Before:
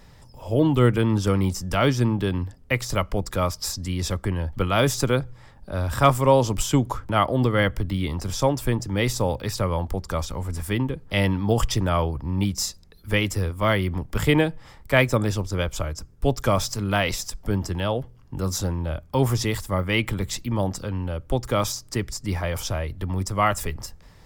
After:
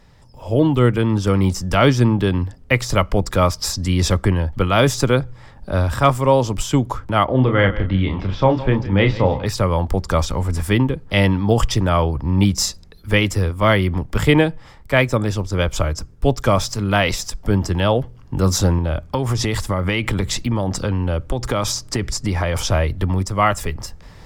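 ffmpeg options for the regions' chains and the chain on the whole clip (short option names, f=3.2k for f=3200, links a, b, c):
-filter_complex "[0:a]asettb=1/sr,asplit=3[a][b][c];[a]atrim=end=7.254[d];[b]atrim=start=7.25:end=9.46,asetpts=PTS-STARTPTS,afade=t=in:d=0.004:c=qsin,afade=t=out:st=2.206:d=0.004:c=qsin,lowpass=f=3.4k:w=0.5412,lowpass=f=3.4k:w=1.3066,asplit=2[e][f];[f]adelay=31,volume=-6.5dB[g];[e][g]amix=inputs=2:normalize=0,atrim=end_sample=97461,aecho=1:1:162|324:0.158|0.038,atrim=end_sample=97461[h];[c]atrim=start=9.456[i];[d][h]acrossfade=d=0.004:c1=hsin:c2=qsin[j];[j][i]acrossfade=d=0.004:c1=qsin:c2=hsin,asettb=1/sr,asplit=3[k][l][m];[k]atrim=end=18.784[n];[l]atrim=start=18.78:end=22.72,asetpts=PTS-STARTPTS,afade=t=in:d=0.004:c=qsin,afade=t=out:st=3.936:d=0.004:c=qsin,equalizer=f=15k:w=1.6:g=-7,acompressor=threshold=-25dB:ratio=10:attack=3.2:release=140:knee=1:detection=peak[o];[m]atrim=start=22.716[p];[n][o]acrossfade=d=0.004:c1=hsin:c2=qsin[q];[q][p]acrossfade=d=0.004:c1=qsin:c2=hsin,highshelf=f=10k:g=-9.5,dynaudnorm=f=250:g=3:m=11.5dB,volume=-1dB"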